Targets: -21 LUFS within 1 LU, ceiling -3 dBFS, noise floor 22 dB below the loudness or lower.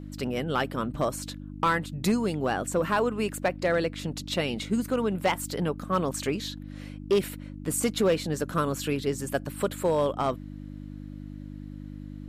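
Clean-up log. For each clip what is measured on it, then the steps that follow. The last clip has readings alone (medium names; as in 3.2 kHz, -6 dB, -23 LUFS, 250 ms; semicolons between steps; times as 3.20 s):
clipped samples 0.4%; clipping level -17.0 dBFS; hum 50 Hz; highest harmonic 300 Hz; hum level -37 dBFS; loudness -28.5 LUFS; peak level -17.0 dBFS; loudness target -21.0 LUFS
-> clip repair -17 dBFS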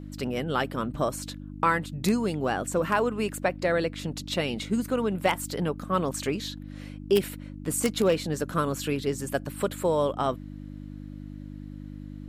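clipped samples 0.0%; hum 50 Hz; highest harmonic 300 Hz; hum level -37 dBFS
-> de-hum 50 Hz, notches 6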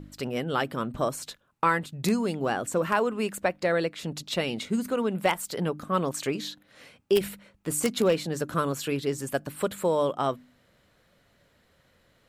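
hum not found; loudness -28.0 LUFS; peak level -8.0 dBFS; loudness target -21.0 LUFS
-> trim +7 dB; peak limiter -3 dBFS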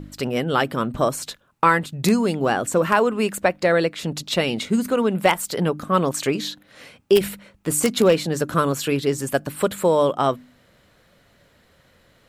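loudness -21.5 LUFS; peak level -3.0 dBFS; noise floor -58 dBFS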